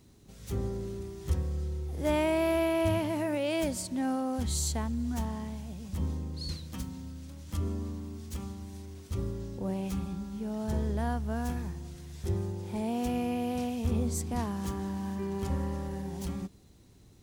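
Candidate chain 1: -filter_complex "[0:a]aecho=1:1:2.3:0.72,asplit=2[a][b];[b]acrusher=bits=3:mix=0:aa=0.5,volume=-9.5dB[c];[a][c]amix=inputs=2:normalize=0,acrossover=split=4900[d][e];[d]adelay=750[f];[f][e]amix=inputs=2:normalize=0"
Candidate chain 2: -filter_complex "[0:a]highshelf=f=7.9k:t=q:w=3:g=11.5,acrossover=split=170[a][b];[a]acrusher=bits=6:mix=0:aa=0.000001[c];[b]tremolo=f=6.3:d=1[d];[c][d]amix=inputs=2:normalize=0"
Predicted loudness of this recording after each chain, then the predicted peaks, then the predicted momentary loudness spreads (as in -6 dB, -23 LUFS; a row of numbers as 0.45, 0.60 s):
-31.5, -34.5 LUFS; -12.0, -13.0 dBFS; 13, 10 LU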